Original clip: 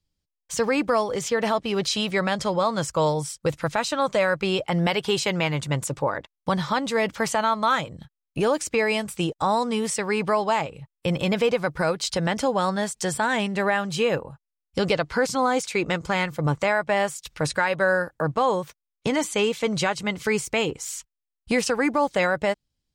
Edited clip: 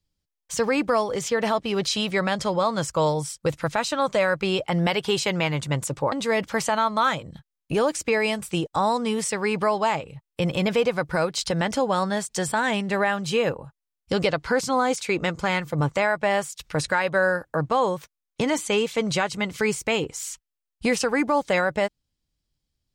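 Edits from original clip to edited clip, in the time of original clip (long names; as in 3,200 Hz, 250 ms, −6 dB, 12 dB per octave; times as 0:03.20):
0:06.12–0:06.78: remove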